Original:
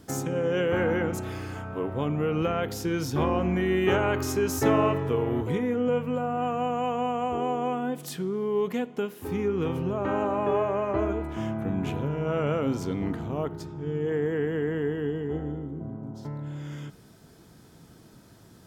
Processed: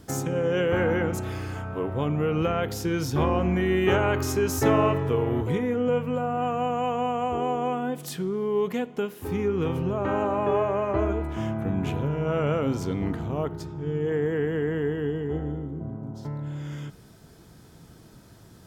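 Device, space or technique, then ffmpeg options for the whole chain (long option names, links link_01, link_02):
low shelf boost with a cut just above: -af "lowshelf=frequency=81:gain=6.5,equalizer=frequency=250:width_type=o:width=0.77:gain=-2,volume=1.5dB"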